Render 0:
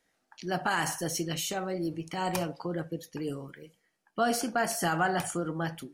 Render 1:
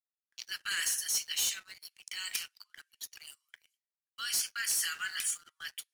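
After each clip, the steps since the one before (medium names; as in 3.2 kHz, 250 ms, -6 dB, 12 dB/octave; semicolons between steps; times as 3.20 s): gate with hold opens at -46 dBFS; Bessel high-pass 2.9 kHz, order 8; waveshaping leveller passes 3; trim -4 dB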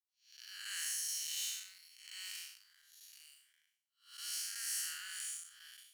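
spectral blur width 227 ms; amplifier tone stack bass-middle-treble 10-0-10; trim -1.5 dB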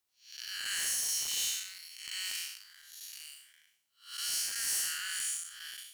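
in parallel at +1.5 dB: compression 6:1, threshold -48 dBFS, peak gain reduction 11.5 dB; on the sum: wavefolder -31.5 dBFS; trim +4.5 dB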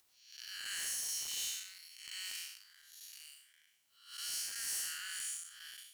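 upward compressor, threshold -53 dBFS; trim -6 dB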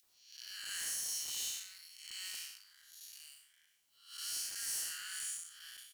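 bands offset in time highs, lows 30 ms, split 2.1 kHz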